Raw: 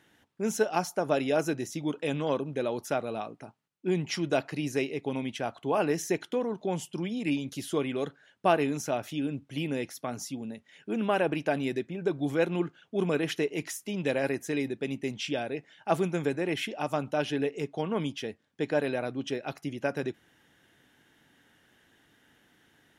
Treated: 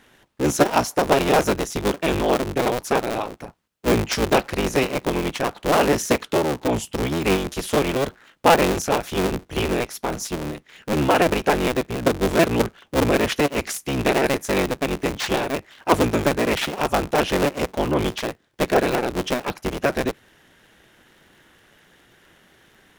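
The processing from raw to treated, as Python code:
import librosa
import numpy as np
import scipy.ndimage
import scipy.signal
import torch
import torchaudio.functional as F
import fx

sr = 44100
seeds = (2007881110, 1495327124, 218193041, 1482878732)

y = fx.cycle_switch(x, sr, every=3, mode='inverted')
y = F.gain(torch.from_numpy(y), 9.0).numpy()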